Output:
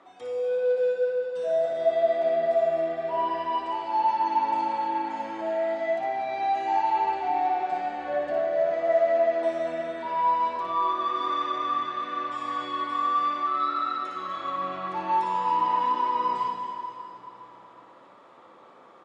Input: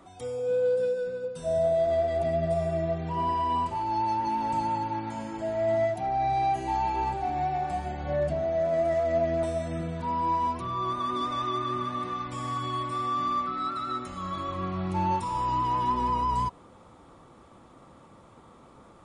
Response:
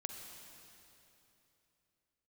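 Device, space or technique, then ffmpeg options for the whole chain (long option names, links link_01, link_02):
station announcement: -filter_complex "[0:a]asettb=1/sr,asplit=3[link_01][link_02][link_03];[link_01]atrim=end=10.064[link_04];[link_02]atrim=start=10.06:end=10.56,asetpts=PTS-STARTPTS,afade=type=in:duration=0.004:curve=qsin,afade=type=out:start_time=0.496:duration=0.004:curve=qsin,asplit=2[link_05][link_06];[link_06]adelay=14,volume=-5dB[link_07];[link_05][link_07]amix=inputs=2:normalize=0,atrim=end_sample=22050[link_08];[link_03]atrim=start=10.556[link_09];[link_04][link_08]acrossfade=duration=0.004:curve1=hsin:curve2=qsin[link_10];[link_10][link_09]acrossfade=duration=0.004:curve1=qsin:curve2=hsin,highpass=410,lowpass=4000,equalizer=frequency=1800:width_type=o:width=0.22:gain=4,aecho=1:1:58.31|244.9:0.562|0.316[link_11];[1:a]atrim=start_sample=2205[link_12];[link_11][link_12]afir=irnorm=-1:irlink=0,volume=3.5dB"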